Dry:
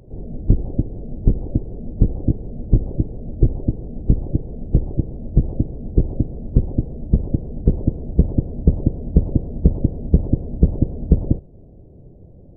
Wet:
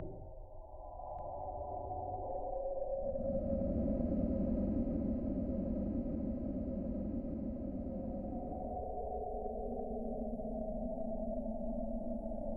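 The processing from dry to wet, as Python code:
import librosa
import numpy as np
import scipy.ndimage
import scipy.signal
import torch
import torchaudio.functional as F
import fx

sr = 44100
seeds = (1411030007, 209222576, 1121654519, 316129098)

y = fx.bin_expand(x, sr, power=3.0)
y = fx.recorder_agc(y, sr, target_db=-12.5, rise_db_per_s=8.7, max_gain_db=30)
y = fx.peak_eq(y, sr, hz=620.0, db=4.0, octaves=1.3)
y = fx.transient(y, sr, attack_db=-8, sustain_db=-4)
y = fx.gate_flip(y, sr, shuts_db=-32.0, range_db=-40)
y = 10.0 ** (-29.5 / 20.0) * np.tanh(y / 10.0 ** (-29.5 / 20.0))
y = fx.paulstretch(y, sr, seeds[0], factor=28.0, window_s=0.1, from_s=6.04)
y = fx.echo_feedback(y, sr, ms=1187, feedback_pct=32, wet_db=-11.5)
y = fx.band_squash(y, sr, depth_pct=100)
y = F.gain(torch.from_numpy(y), 18.0).numpy()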